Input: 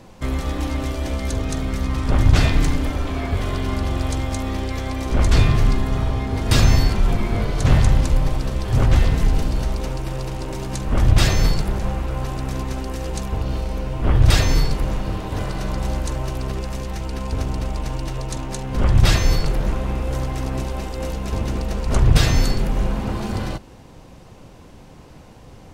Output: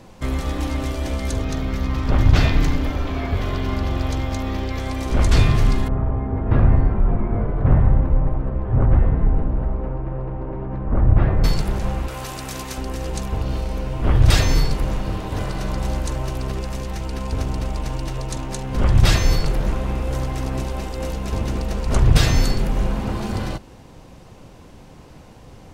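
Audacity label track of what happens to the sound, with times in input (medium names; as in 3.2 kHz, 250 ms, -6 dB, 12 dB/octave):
1.430000	4.800000	peaking EQ 8.9 kHz -11.5 dB 0.69 oct
5.880000	11.440000	Bessel low-pass 1.1 kHz, order 4
12.080000	12.780000	tilt EQ +2.5 dB/octave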